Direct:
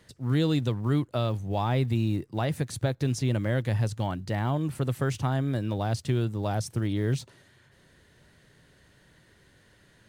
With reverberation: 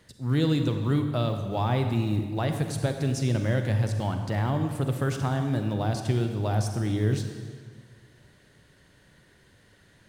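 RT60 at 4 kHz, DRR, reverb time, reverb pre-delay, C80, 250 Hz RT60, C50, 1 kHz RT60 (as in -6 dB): 1.4 s, 6.0 dB, 1.7 s, 35 ms, 7.5 dB, 1.9 s, 6.5 dB, 1.6 s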